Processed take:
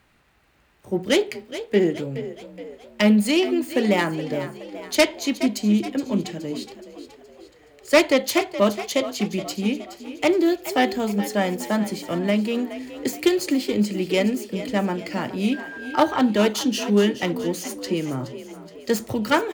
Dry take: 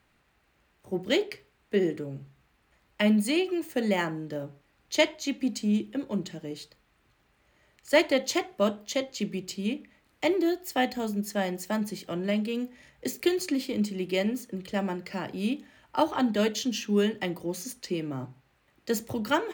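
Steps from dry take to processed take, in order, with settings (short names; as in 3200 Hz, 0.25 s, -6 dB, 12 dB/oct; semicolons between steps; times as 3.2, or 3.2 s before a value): self-modulated delay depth 0.13 ms; frequency-shifting echo 0.421 s, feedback 50%, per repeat +45 Hz, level -13 dB; 15.52–16.21 whine 1600 Hz -41 dBFS; gain +6.5 dB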